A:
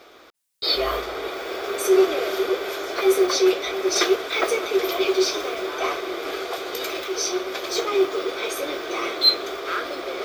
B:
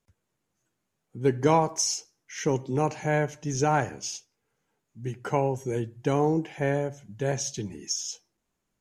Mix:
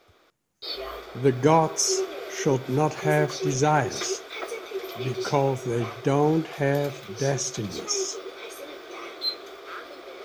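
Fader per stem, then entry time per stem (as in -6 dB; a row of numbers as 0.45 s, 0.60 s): -11.5 dB, +2.5 dB; 0.00 s, 0.00 s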